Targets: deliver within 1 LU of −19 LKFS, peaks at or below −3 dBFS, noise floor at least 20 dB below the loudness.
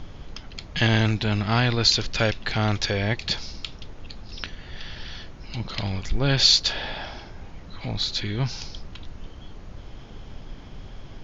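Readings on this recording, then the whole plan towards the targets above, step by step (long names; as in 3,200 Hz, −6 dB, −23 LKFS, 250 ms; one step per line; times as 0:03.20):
background noise floor −42 dBFS; target noise floor −43 dBFS; integrated loudness −23.0 LKFS; sample peak −5.0 dBFS; target loudness −19.0 LKFS
→ noise reduction from a noise print 6 dB
level +4 dB
brickwall limiter −3 dBFS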